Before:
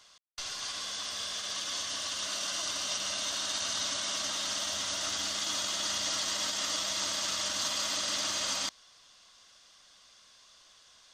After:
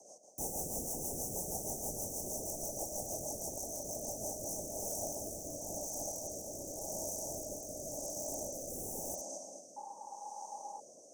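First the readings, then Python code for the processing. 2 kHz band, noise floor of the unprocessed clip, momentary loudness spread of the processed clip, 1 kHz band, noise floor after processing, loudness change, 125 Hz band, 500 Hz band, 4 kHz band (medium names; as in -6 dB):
under -40 dB, -60 dBFS, 9 LU, -5.5 dB, -56 dBFS, -8.5 dB, +5.5 dB, +3.5 dB, -23.5 dB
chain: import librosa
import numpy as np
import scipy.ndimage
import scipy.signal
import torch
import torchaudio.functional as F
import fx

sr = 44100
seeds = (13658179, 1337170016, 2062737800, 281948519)

p1 = fx.echo_feedback(x, sr, ms=229, feedback_pct=46, wet_db=-6)
p2 = np.clip(p1, -10.0 ** (-35.5 / 20.0), 10.0 ** (-35.5 / 20.0))
p3 = p1 + (p2 * librosa.db_to_amplitude(-8.5))
p4 = fx.rev_freeverb(p3, sr, rt60_s=0.73, hf_ratio=0.85, predelay_ms=15, drr_db=6.0)
p5 = fx.over_compress(p4, sr, threshold_db=-36.0, ratio=-1.0)
p6 = scipy.signal.sosfilt(scipy.signal.cheby1(2, 1.0, 290.0, 'highpass', fs=sr, output='sos'), p5)
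p7 = fx.peak_eq(p6, sr, hz=560.0, db=4.5, octaves=0.5)
p8 = (np.mod(10.0 ** (31.0 / 20.0) * p7 + 1.0, 2.0) - 1.0) / 10.0 ** (31.0 / 20.0)
p9 = fx.rotary_switch(p8, sr, hz=6.3, then_hz=0.9, switch_at_s=4.01)
p10 = fx.spec_paint(p9, sr, seeds[0], shape='noise', start_s=9.76, length_s=1.04, low_hz=780.0, high_hz=3400.0, level_db=-38.0)
p11 = scipy.signal.sosfilt(scipy.signal.cheby1(5, 1.0, [820.0, 5900.0], 'bandstop', fs=sr, output='sos'), p10)
p12 = fx.high_shelf(p11, sr, hz=4500.0, db=-7.5)
y = p12 * librosa.db_to_amplitude(7.5)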